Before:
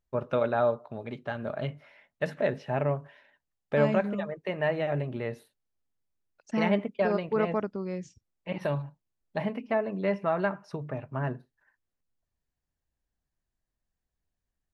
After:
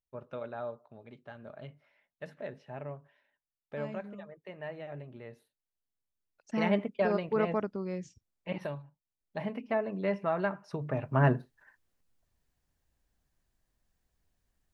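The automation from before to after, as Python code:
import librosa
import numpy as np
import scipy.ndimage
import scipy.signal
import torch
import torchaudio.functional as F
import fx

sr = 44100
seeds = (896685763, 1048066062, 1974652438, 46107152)

y = fx.gain(x, sr, db=fx.line((5.29, -13.5), (6.75, -2.0), (8.55, -2.0), (8.83, -14.0), (9.58, -3.0), (10.61, -3.0), (11.26, 7.5)))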